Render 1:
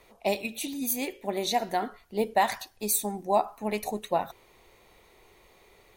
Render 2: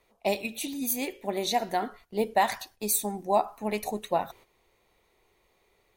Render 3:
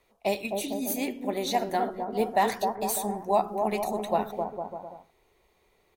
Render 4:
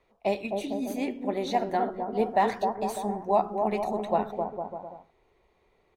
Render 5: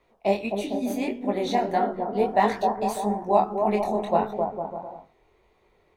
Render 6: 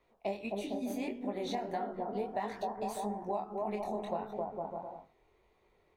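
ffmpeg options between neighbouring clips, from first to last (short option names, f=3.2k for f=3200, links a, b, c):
-af "agate=range=-10dB:threshold=-51dB:ratio=16:detection=peak"
-filter_complex "[0:a]acrossover=split=1200[a][b];[a]aecho=1:1:260|455|601.2|710.9|793.2:0.631|0.398|0.251|0.158|0.1[c];[b]asoftclip=type=tanh:threshold=-25.5dB[d];[c][d]amix=inputs=2:normalize=0"
-af "aemphasis=mode=reproduction:type=75fm"
-af "flanger=delay=19:depth=6.4:speed=1.6,volume=6.5dB"
-af "acompressor=threshold=-26dB:ratio=6,volume=-6.5dB"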